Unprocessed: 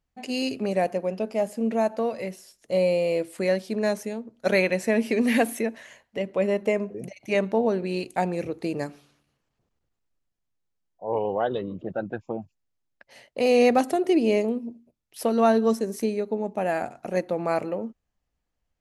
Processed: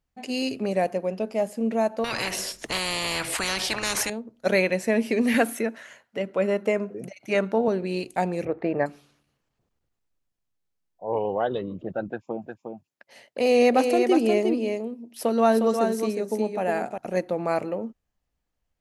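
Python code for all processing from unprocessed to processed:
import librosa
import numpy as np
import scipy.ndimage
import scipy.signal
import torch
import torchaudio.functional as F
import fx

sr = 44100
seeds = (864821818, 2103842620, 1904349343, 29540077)

y = fx.chain(x, sr, fx.high_shelf(hz=5800.0, db=-10.5),
    fx.spectral_comp(ratio=10.0), at=(2.04, 4.1))
y = fx.chain(y, sr, fx.highpass(hz=120.0, slope=12),
    fx.peak_eq(hz=1400.0, db=10.5, octaves=0.28), at=(5.34, 7.68))
y = fx.chain(y, sr, fx.lowpass_res(hz=1800.0, q=2.2),
    fx.peak_eq(hz=660.0, db=9.0, octaves=0.89), at=(8.45, 8.86))
y = fx.chain(y, sr, fx.highpass(hz=150.0, slope=12),
    fx.echo_single(ms=358, db=-5.5), at=(12.08, 16.98))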